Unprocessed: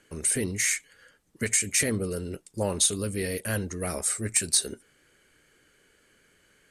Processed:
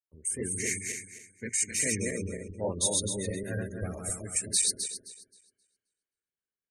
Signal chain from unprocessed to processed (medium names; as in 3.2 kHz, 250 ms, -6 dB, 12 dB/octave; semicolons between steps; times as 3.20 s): backward echo that repeats 132 ms, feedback 69%, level -1 dB; spectral gate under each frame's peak -20 dB strong; three bands expanded up and down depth 100%; trim -8 dB